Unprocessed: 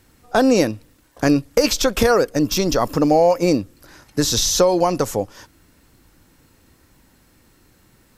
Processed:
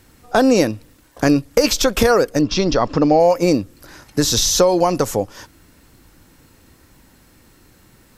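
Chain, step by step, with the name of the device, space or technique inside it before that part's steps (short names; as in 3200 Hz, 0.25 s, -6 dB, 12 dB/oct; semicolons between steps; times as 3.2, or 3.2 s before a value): 2.41–3.2 LPF 5200 Hz 24 dB/oct; parallel compression (in parallel at -4 dB: compressor, threshold -24 dBFS, peak gain reduction 13 dB)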